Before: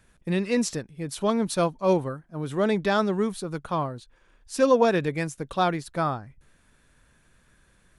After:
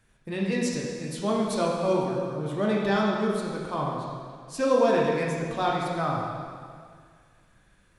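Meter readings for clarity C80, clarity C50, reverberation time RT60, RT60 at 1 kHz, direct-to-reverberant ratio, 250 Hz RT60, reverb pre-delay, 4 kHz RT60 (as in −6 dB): 1.5 dB, 0.0 dB, 2.0 s, 2.0 s, −3.5 dB, 2.0 s, 5 ms, 1.9 s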